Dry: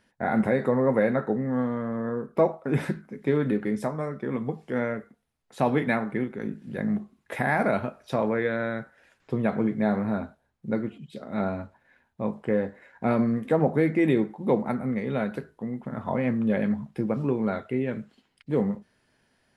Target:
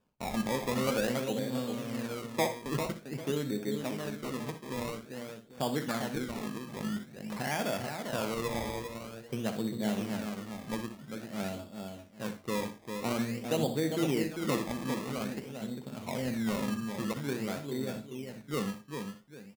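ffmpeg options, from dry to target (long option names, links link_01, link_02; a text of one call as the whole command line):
ffmpeg -i in.wav -filter_complex "[0:a]asplit=2[link_01][link_02];[link_02]adelay=398,lowpass=frequency=1600:poles=1,volume=-5.5dB,asplit=2[link_03][link_04];[link_04]adelay=398,lowpass=frequency=1600:poles=1,volume=0.3,asplit=2[link_05][link_06];[link_06]adelay=398,lowpass=frequency=1600:poles=1,volume=0.3,asplit=2[link_07][link_08];[link_08]adelay=398,lowpass=frequency=1600:poles=1,volume=0.3[link_09];[link_03][link_05][link_07][link_09]amix=inputs=4:normalize=0[link_10];[link_01][link_10]amix=inputs=2:normalize=0,acrusher=samples=21:mix=1:aa=0.000001:lfo=1:lforange=21:lforate=0.49,asplit=2[link_11][link_12];[link_12]aecho=0:1:62|79:0.266|0.133[link_13];[link_11][link_13]amix=inputs=2:normalize=0,volume=-9dB" out.wav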